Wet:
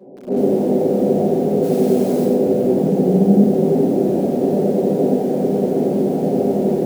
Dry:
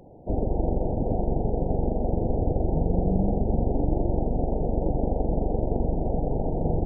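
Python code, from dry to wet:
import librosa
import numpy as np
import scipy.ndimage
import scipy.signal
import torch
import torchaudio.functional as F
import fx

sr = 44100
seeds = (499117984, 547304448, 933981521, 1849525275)

p1 = fx.dmg_noise_colour(x, sr, seeds[0], colour='white', level_db=-39.0, at=(1.61, 2.24), fade=0.02)
p2 = scipy.signal.sosfilt(scipy.signal.butter(4, 180.0, 'highpass', fs=sr, output='sos'), p1)
p3 = fx.tilt_shelf(p2, sr, db=4.5, hz=650.0)
p4 = fx.small_body(p3, sr, hz=(250.0, 390.0, 570.0), ring_ms=70, db=7)
p5 = p4 + fx.echo_single(p4, sr, ms=413, db=-18.5, dry=0)
p6 = fx.room_shoebox(p5, sr, seeds[1], volume_m3=37.0, walls='mixed', distance_m=1.2)
p7 = fx.echo_crushed(p6, sr, ms=92, feedback_pct=35, bits=6, wet_db=-4)
y = p7 * librosa.db_to_amplitude(-3.5)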